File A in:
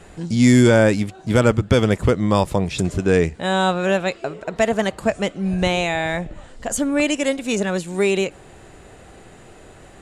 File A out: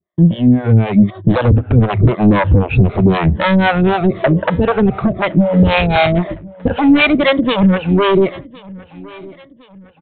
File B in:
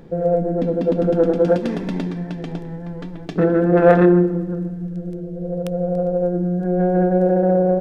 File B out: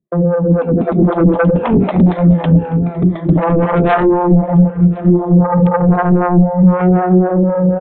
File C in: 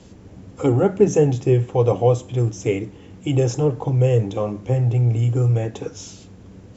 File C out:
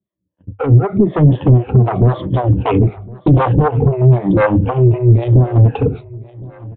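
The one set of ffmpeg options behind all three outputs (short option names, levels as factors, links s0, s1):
-filter_complex "[0:a]afftfilt=real='re*pow(10,17/40*sin(2*PI*(1.2*log(max(b,1)*sr/1024/100)/log(2)-(-0.97)*(pts-256)/sr)))':imag='im*pow(10,17/40*sin(2*PI*(1.2*log(max(b,1)*sr/1024/100)/log(2)-(-0.97)*(pts-256)/sr)))':win_size=1024:overlap=0.75,aemphasis=mode=reproduction:type=75kf,agate=range=0.00355:threshold=0.0251:ratio=16:detection=peak,highpass=43,equalizer=f=83:w=0.38:g=11,bandreject=f=50:t=h:w=6,bandreject=f=100:t=h:w=6,acompressor=threshold=0.447:ratio=16,alimiter=limit=0.316:level=0:latency=1:release=198,dynaudnorm=f=130:g=17:m=2,aresample=8000,aeval=exprs='0.631*sin(PI/2*2*val(0)/0.631)':c=same,aresample=44100,acrossover=split=490[s0][s1];[s0]aeval=exprs='val(0)*(1-1/2+1/2*cos(2*PI*3.9*n/s))':c=same[s2];[s1]aeval=exprs='val(0)*(1-1/2-1/2*cos(2*PI*3.9*n/s))':c=same[s3];[s2][s3]amix=inputs=2:normalize=0,aecho=1:1:1061|2122|3183:0.0794|0.035|0.0154,volume=1.12"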